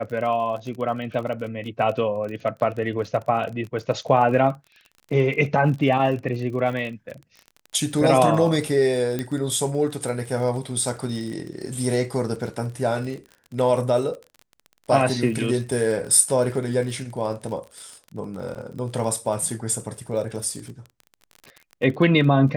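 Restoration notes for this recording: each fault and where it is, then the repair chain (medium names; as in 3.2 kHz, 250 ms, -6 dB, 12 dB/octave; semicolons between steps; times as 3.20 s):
crackle 34 per s -31 dBFS
9.19 s: pop -13 dBFS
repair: de-click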